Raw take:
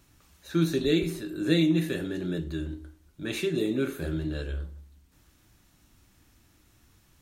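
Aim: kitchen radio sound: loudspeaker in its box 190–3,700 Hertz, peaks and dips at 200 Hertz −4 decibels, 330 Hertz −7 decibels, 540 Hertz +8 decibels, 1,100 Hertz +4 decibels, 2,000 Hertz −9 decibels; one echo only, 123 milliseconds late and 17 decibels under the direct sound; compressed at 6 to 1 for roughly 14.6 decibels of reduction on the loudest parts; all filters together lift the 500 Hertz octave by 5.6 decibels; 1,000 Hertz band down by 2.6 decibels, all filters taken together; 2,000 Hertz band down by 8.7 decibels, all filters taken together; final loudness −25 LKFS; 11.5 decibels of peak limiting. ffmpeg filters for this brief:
ffmpeg -i in.wav -af "equalizer=frequency=500:width_type=o:gain=8.5,equalizer=frequency=1000:width_type=o:gain=-5,equalizer=frequency=2000:width_type=o:gain=-7.5,acompressor=threshold=-32dB:ratio=6,alimiter=level_in=9dB:limit=-24dB:level=0:latency=1,volume=-9dB,highpass=190,equalizer=frequency=200:width_type=q:width=4:gain=-4,equalizer=frequency=330:width_type=q:width=4:gain=-7,equalizer=frequency=540:width_type=q:width=4:gain=8,equalizer=frequency=1100:width_type=q:width=4:gain=4,equalizer=frequency=2000:width_type=q:width=4:gain=-9,lowpass=frequency=3700:width=0.5412,lowpass=frequency=3700:width=1.3066,aecho=1:1:123:0.141,volume=19dB" out.wav

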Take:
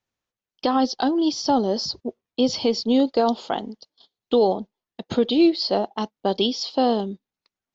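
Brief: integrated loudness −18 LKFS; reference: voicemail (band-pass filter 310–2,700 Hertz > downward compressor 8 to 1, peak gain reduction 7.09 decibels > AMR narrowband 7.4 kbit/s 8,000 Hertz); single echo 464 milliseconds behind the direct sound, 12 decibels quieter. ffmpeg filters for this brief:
ffmpeg -i in.wav -af "highpass=310,lowpass=2700,aecho=1:1:464:0.251,acompressor=threshold=-21dB:ratio=8,volume=11.5dB" -ar 8000 -c:a libopencore_amrnb -b:a 7400 out.amr

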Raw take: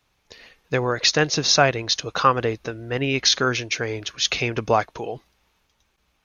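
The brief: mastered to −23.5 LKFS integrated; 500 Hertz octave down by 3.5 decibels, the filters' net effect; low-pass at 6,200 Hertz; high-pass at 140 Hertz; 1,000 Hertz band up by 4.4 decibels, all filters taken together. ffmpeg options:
ffmpeg -i in.wav -af "highpass=140,lowpass=6200,equalizer=frequency=500:width_type=o:gain=-6.5,equalizer=frequency=1000:width_type=o:gain=7.5,volume=-3dB" out.wav

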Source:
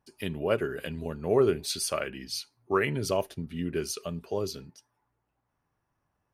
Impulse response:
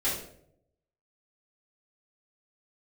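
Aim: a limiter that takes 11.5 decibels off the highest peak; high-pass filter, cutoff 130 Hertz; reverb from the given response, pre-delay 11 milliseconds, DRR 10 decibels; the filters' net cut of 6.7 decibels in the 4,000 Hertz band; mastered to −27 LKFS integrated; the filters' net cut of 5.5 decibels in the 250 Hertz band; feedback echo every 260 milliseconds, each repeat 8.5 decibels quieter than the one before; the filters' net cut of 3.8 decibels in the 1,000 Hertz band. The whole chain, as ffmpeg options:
-filter_complex "[0:a]highpass=130,equalizer=frequency=250:width_type=o:gain=-8,equalizer=frequency=1000:width_type=o:gain=-4,equalizer=frequency=4000:width_type=o:gain=-8.5,alimiter=level_in=3dB:limit=-24dB:level=0:latency=1,volume=-3dB,aecho=1:1:260|520|780|1040:0.376|0.143|0.0543|0.0206,asplit=2[link_01][link_02];[1:a]atrim=start_sample=2205,adelay=11[link_03];[link_02][link_03]afir=irnorm=-1:irlink=0,volume=-19dB[link_04];[link_01][link_04]amix=inputs=2:normalize=0,volume=10.5dB"

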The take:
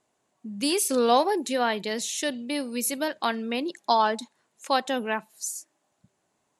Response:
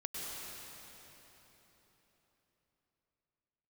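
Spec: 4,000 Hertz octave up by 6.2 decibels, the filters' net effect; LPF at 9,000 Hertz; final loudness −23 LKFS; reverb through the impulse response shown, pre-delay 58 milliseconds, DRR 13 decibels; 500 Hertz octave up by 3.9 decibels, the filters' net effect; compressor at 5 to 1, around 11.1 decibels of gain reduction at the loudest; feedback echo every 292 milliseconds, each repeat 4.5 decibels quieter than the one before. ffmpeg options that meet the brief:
-filter_complex "[0:a]lowpass=9000,equalizer=frequency=500:width_type=o:gain=4.5,equalizer=frequency=4000:width_type=o:gain=7.5,acompressor=threshold=-26dB:ratio=5,aecho=1:1:292|584|876|1168|1460|1752|2044|2336|2628:0.596|0.357|0.214|0.129|0.0772|0.0463|0.0278|0.0167|0.01,asplit=2[link_01][link_02];[1:a]atrim=start_sample=2205,adelay=58[link_03];[link_02][link_03]afir=irnorm=-1:irlink=0,volume=-14.5dB[link_04];[link_01][link_04]amix=inputs=2:normalize=0,volume=5.5dB"

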